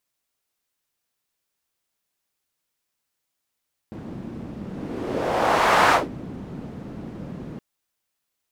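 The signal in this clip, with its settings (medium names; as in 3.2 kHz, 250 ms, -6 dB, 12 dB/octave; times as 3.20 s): whoosh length 3.67 s, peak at 2.00 s, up 1.43 s, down 0.19 s, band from 210 Hz, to 1.1 kHz, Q 1.5, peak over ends 19 dB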